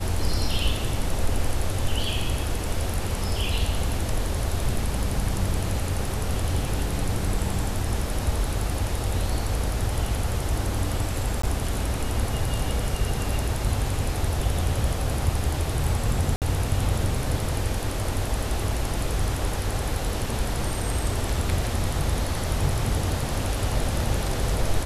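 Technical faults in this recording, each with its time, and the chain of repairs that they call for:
11.42–11.43 s: dropout 14 ms
16.36–16.42 s: dropout 58 ms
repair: interpolate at 11.42 s, 14 ms; interpolate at 16.36 s, 58 ms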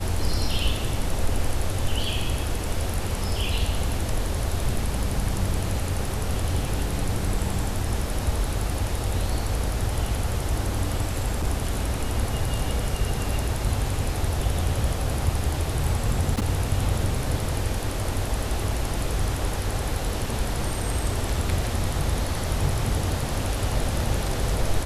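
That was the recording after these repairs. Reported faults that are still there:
nothing left

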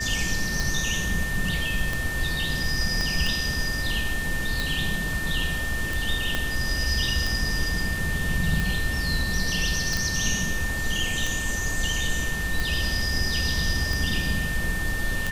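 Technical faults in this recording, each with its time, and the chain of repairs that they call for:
tick 45 rpm
whine 1.8 kHz -29 dBFS
3.01 s: pop -13 dBFS
6.35 s: pop -10 dBFS
9.97 s: pop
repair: de-click; band-stop 1.8 kHz, Q 30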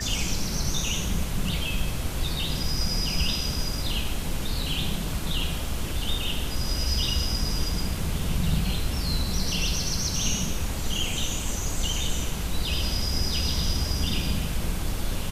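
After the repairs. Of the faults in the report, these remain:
3.01 s: pop
6.35 s: pop

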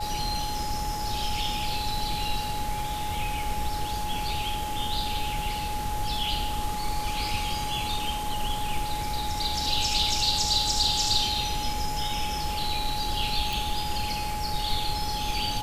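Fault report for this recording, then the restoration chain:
whine 840 Hz -31 dBFS
13.53 s: pop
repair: de-click; band-stop 840 Hz, Q 30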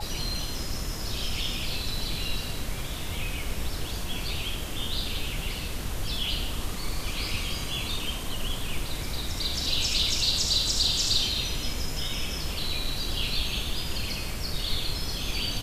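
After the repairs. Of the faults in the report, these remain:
nothing left

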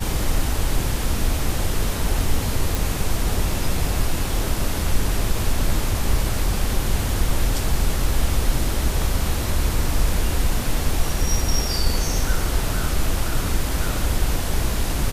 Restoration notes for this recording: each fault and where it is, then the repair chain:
2.75 s: pop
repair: de-click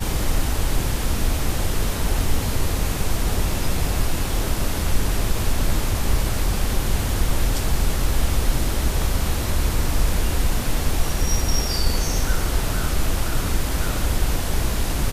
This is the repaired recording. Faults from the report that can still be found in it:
nothing left

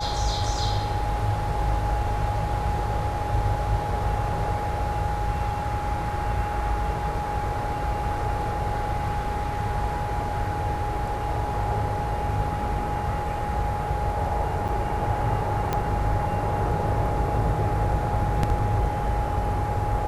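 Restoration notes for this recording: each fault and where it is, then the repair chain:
whine 830 Hz -29 dBFS
14.68–14.69 s: dropout 7.1 ms
15.73 s: pop -11 dBFS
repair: de-click; band-stop 830 Hz, Q 30; interpolate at 14.68 s, 7.1 ms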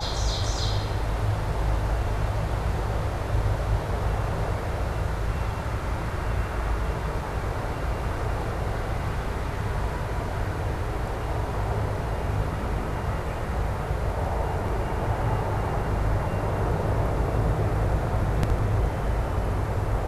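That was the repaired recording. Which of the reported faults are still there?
nothing left

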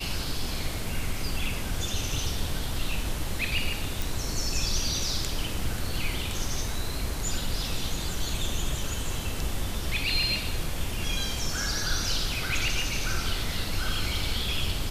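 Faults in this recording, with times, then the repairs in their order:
4.02 s: pop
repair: de-click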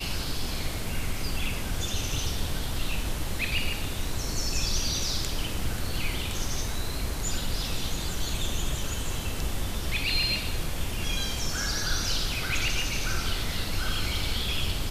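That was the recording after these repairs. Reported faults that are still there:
nothing left

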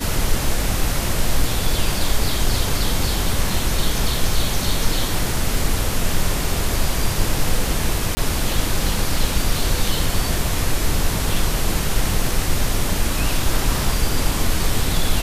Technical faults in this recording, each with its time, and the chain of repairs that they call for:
8.15–8.17 s: dropout 20 ms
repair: interpolate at 8.15 s, 20 ms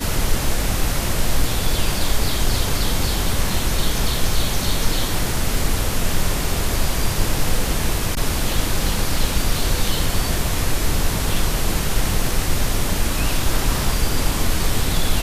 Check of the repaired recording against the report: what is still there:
nothing left

